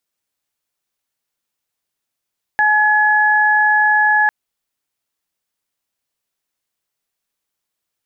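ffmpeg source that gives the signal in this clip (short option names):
-f lavfi -i "aevalsrc='0.178*sin(2*PI*848*t)+0.251*sin(2*PI*1696*t)':d=1.7:s=44100"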